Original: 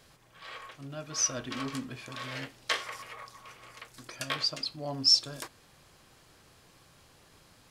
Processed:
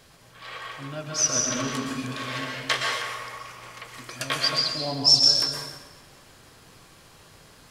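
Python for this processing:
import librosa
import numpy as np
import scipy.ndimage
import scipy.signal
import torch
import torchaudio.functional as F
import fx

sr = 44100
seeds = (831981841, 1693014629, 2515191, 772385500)

y = fx.rev_plate(x, sr, seeds[0], rt60_s=1.2, hf_ratio=0.85, predelay_ms=105, drr_db=0.0)
y = y * 10.0 ** (5.0 / 20.0)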